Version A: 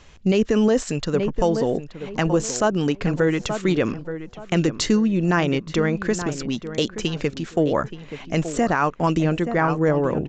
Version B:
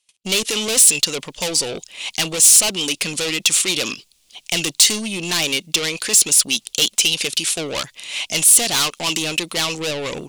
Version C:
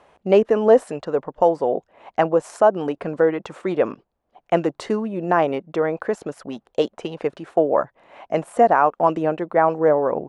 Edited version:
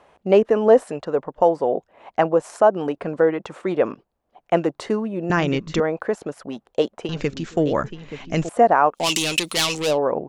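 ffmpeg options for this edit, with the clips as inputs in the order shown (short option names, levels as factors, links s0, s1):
-filter_complex "[0:a]asplit=2[s0][s1];[2:a]asplit=4[s2][s3][s4][s5];[s2]atrim=end=5.302[s6];[s0]atrim=start=5.298:end=5.802[s7];[s3]atrim=start=5.798:end=7.092[s8];[s1]atrim=start=7.088:end=8.492[s9];[s4]atrim=start=8.488:end=9.1[s10];[1:a]atrim=start=8.94:end=9.99[s11];[s5]atrim=start=9.83[s12];[s6][s7]acrossfade=d=0.004:c1=hsin:c2=hsin[s13];[s13][s8]acrossfade=d=0.004:c1=hsin:c2=hsin[s14];[s14][s9]acrossfade=d=0.004:c1=hsin:c2=hsin[s15];[s15][s10]acrossfade=d=0.004:c1=hsin:c2=hsin[s16];[s16][s11]acrossfade=d=0.16:c1=tri:c2=tri[s17];[s17][s12]acrossfade=d=0.16:c1=tri:c2=tri"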